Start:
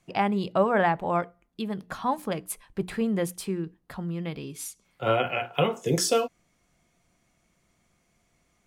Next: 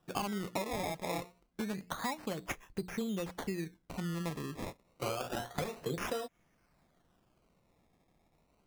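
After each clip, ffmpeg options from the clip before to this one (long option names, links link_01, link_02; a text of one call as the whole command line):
ffmpeg -i in.wav -af "acompressor=threshold=-30dB:ratio=16,acrusher=samples=20:mix=1:aa=0.000001:lfo=1:lforange=20:lforate=0.28,volume=-2.5dB" out.wav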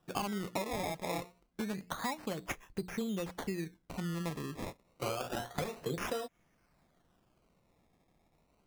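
ffmpeg -i in.wav -af anull out.wav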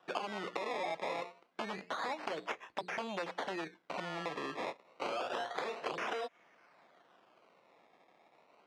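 ffmpeg -i in.wav -filter_complex "[0:a]aeval=exprs='0.119*(cos(1*acos(clip(val(0)/0.119,-1,1)))-cos(1*PI/2))+0.0473*(cos(7*acos(clip(val(0)/0.119,-1,1)))-cos(7*PI/2))':channel_layout=same,highpass=520,lowpass=3300,acrossover=split=750|2200[link_01][link_02][link_03];[link_01]acompressor=threshold=-45dB:ratio=4[link_04];[link_02]acompressor=threshold=-49dB:ratio=4[link_05];[link_03]acompressor=threshold=-52dB:ratio=4[link_06];[link_04][link_05][link_06]amix=inputs=3:normalize=0,volume=6.5dB" out.wav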